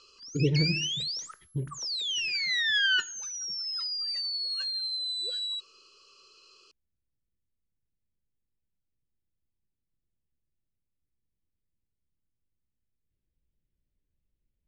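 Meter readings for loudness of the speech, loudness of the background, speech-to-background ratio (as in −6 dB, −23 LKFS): −31.5 LKFS, −28.5 LKFS, −3.0 dB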